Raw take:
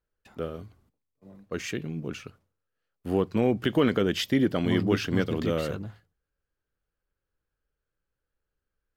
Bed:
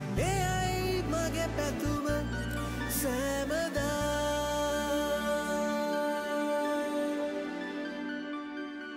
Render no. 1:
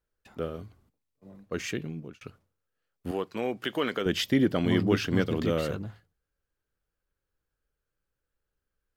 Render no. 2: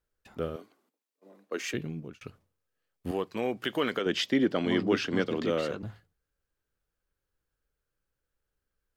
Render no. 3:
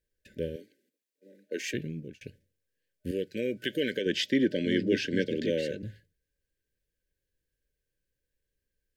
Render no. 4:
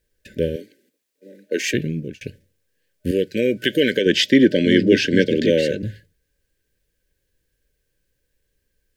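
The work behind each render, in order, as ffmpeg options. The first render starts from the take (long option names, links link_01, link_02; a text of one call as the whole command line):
ffmpeg -i in.wav -filter_complex "[0:a]asettb=1/sr,asplit=3[link_01][link_02][link_03];[link_01]atrim=end=3.114[link_04];[link_02]atrim=start=3.11:end=4.06,asetpts=PTS-STARTPTS,afade=type=in:duration=0.004:curve=qsin,afade=type=out:start_time=0.946:duration=0.004:curve=qsin,highpass=frequency=750:poles=1[link_05];[link_03]atrim=start=4.056[link_06];[link_04][link_05]acrossfade=duration=0.004:curve1=hsin:curve2=qsin[link_07];[link_07][link_06]acrossfade=duration=0.004:curve1=qsin:curve2=hsin,asplit=2[link_08][link_09];[link_08]atrim=end=2.21,asetpts=PTS-STARTPTS,afade=type=out:start_time=1.65:duration=0.56:curve=qsin[link_10];[link_09]atrim=start=2.21,asetpts=PTS-STARTPTS,afade=type=in:duration=0.004:curve=hsin[link_11];[link_10][link_11]concat=n=2:v=0:a=1" out.wav
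ffmpeg -i in.wav -filter_complex "[0:a]asettb=1/sr,asplit=3[link_01][link_02][link_03];[link_01]atrim=end=0.564[link_04];[link_02]atrim=start=0.56:end=1.74,asetpts=PTS-STARTPTS,afade=type=in:duration=0.004:curve=qsin,afade=type=out:start_time=1.176:duration=0.004:curve=qsin,highpass=frequency=280:width=0.5412,highpass=frequency=280:width=1.3066[link_05];[link_03]atrim=start=1.736[link_06];[link_04][link_05]acrossfade=duration=0.004:curve1=hsin:curve2=qsin[link_07];[link_07][link_06]acrossfade=duration=0.004:curve1=qsin:curve2=hsin,asettb=1/sr,asplit=3[link_08][link_09][link_10];[link_08]atrim=end=2.254[link_11];[link_09]atrim=start=2.25:end=3.46,asetpts=PTS-STARTPTS,afade=type=in:duration=0.004:curve=qsin,afade=type=out:start_time=1.206:duration=0.004:curve=qsin,bandreject=frequency=1400:width=12[link_12];[link_10]atrim=start=3.456[link_13];[link_11][link_12]acrossfade=duration=0.004:curve1=hsin:curve2=qsin[link_14];[link_14][link_13]acrossfade=duration=0.004:curve1=qsin:curve2=hsin,asettb=1/sr,asplit=3[link_15][link_16][link_17];[link_15]atrim=end=3.994[link_18];[link_16]atrim=start=3.99:end=5.83,asetpts=PTS-STARTPTS,afade=type=in:duration=0.004:curve=qsin,afade=type=out:start_time=1.836:duration=0.004:curve=qsin,acrossover=split=200 7800:gain=0.178 1 0.178[link_19][link_20][link_21];[link_19][link_20][link_21]amix=inputs=3:normalize=0[link_22];[link_17]atrim=start=5.826[link_23];[link_18][link_22]acrossfade=duration=0.004:curve1=hsin:curve2=qsin[link_24];[link_24][link_23]acrossfade=duration=0.004:curve1=qsin:curve2=hsin" out.wav
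ffmpeg -i in.wav -af "afftfilt=real='re*(1-between(b*sr/4096,610,1500))':imag='im*(1-between(b*sr/4096,610,1500))':win_size=4096:overlap=0.75" out.wav
ffmpeg -i in.wav -af "volume=12dB,alimiter=limit=-1dB:level=0:latency=1" out.wav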